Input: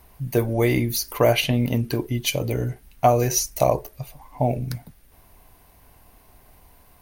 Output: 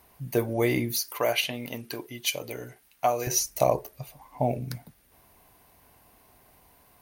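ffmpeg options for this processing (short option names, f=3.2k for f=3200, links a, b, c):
-af "asetnsamples=n=441:p=0,asendcmd='1.01 highpass f 870;3.27 highpass f 140',highpass=f=180:p=1,volume=-3dB"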